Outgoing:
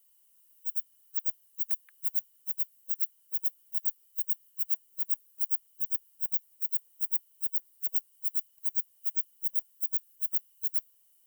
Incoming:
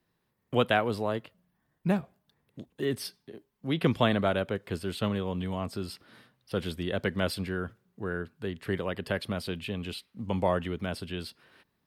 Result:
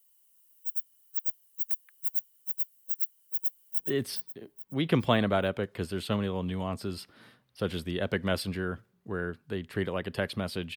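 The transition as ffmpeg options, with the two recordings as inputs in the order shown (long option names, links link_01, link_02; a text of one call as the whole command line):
ffmpeg -i cue0.wav -i cue1.wav -filter_complex "[0:a]apad=whole_dur=10.76,atrim=end=10.76,atrim=end=3.792[link_01];[1:a]atrim=start=2.708:end=9.68[link_02];[link_01][link_02]acrossfade=duration=0.004:curve1=hsin:curve2=hsin,asplit=2[link_03][link_04];[link_04]afade=type=in:start_time=3.1:duration=0.01,afade=type=out:start_time=3.79:duration=0.01,aecho=0:1:420|840|1260|1680:0.530884|0.18581|0.0650333|0.0227617[link_05];[link_03][link_05]amix=inputs=2:normalize=0" out.wav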